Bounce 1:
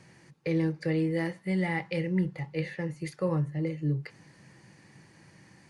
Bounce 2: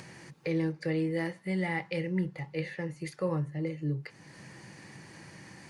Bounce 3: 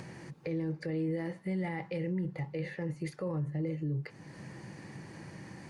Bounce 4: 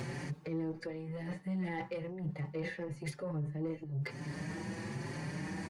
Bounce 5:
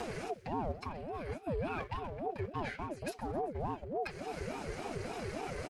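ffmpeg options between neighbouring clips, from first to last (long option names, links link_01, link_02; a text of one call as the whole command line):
ffmpeg -i in.wav -filter_complex "[0:a]lowshelf=frequency=210:gain=-4,asplit=2[link_01][link_02];[link_02]acompressor=mode=upward:threshold=-32dB:ratio=2.5,volume=1dB[link_03];[link_01][link_03]amix=inputs=2:normalize=0,volume=-7.5dB" out.wav
ffmpeg -i in.wav -af "tiltshelf=frequency=1200:gain=4.5,alimiter=level_in=3.5dB:limit=-24dB:level=0:latency=1:release=39,volume=-3.5dB" out.wav
ffmpeg -i in.wav -filter_complex "[0:a]areverse,acompressor=threshold=-41dB:ratio=16,areverse,asoftclip=type=tanh:threshold=-39dB,asplit=2[link_01][link_02];[link_02]adelay=5.4,afreqshift=1[link_03];[link_01][link_03]amix=inputs=2:normalize=1,volume=11dB" out.wav
ffmpeg -i in.wav -filter_complex "[0:a]aecho=1:1:130|260|390|520|650:0.106|0.0593|0.0332|0.0186|0.0104,acrossover=split=320|1400|2000[link_01][link_02][link_03][link_04];[link_02]aeval=exprs='sgn(val(0))*max(abs(val(0))-0.00119,0)':channel_layout=same[link_05];[link_01][link_05][link_03][link_04]amix=inputs=4:normalize=0,aeval=exprs='val(0)*sin(2*PI*420*n/s+420*0.45/3.5*sin(2*PI*3.5*n/s))':channel_layout=same,volume=3.5dB" out.wav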